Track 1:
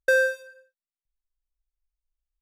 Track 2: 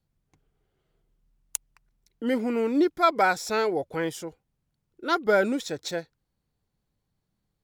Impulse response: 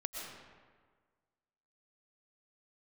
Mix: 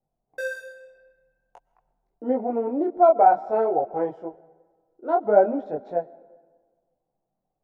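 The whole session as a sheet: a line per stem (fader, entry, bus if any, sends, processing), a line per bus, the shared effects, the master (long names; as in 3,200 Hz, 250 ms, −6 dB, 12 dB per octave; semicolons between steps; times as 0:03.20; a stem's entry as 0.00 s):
−9.5 dB, 0.30 s, send −4.5 dB, no processing
+1.0 dB, 0.00 s, send −17 dB, low-pass with resonance 730 Hz, resonance Q 4.9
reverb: on, RT60 1.6 s, pre-delay 80 ms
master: parametric band 71 Hz −14.5 dB 1.5 octaves; micro pitch shift up and down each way 18 cents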